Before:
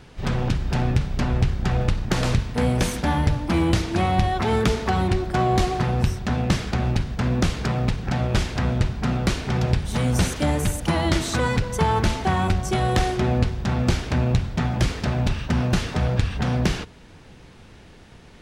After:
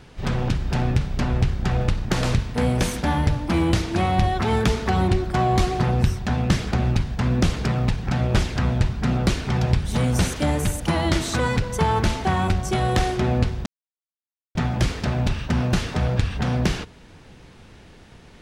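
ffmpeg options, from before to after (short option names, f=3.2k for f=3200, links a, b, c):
-filter_complex "[0:a]asettb=1/sr,asplit=3[a][b][c];[a]atrim=end=4.214[d];[b]atrim=start=4.21:end=10.05,asetpts=PTS-STARTPTS,afade=t=in:d=0.004:c=qsin,afade=t=out:st=5.836:d=0.004:c=qsin,aphaser=in_gain=1:out_gain=1:delay=1.3:decay=0.2:speed=1.2:type=triangular[e];[c]atrim=start=10.046[f];[d][e]acrossfade=d=0.004:c1=hsin:c2=qsin[g];[g][f]acrossfade=d=0.004:c1=qsin:c2=hsin,asplit=3[h][i][j];[h]atrim=end=13.66,asetpts=PTS-STARTPTS,afade=t=out:st=13.656:d=0.004:c=hsin[k];[i]atrim=start=13.66:end=14.55,asetpts=PTS-STARTPTS,volume=0[l];[j]atrim=start=14.55,asetpts=PTS-STARTPTS,afade=t=in:d=0.004:c=hsin[m];[k][l][m]concat=n=3:v=0:a=1"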